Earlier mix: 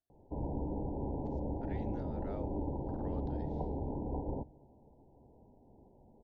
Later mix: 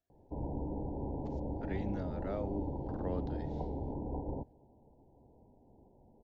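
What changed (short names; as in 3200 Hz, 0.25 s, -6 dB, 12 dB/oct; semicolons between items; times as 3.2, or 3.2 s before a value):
speech +6.5 dB; background: send -9.0 dB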